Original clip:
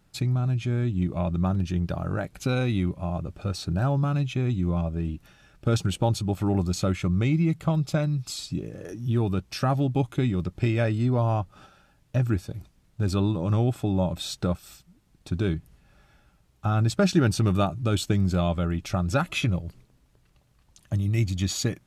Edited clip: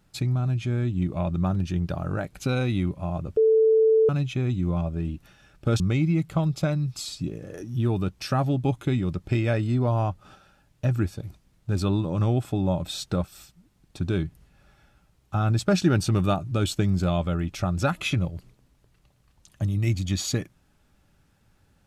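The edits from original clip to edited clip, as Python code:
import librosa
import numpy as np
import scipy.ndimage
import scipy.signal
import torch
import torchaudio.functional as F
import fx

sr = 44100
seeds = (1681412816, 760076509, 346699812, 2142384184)

y = fx.edit(x, sr, fx.bleep(start_s=3.37, length_s=0.72, hz=442.0, db=-15.0),
    fx.cut(start_s=5.8, length_s=1.31), tone=tone)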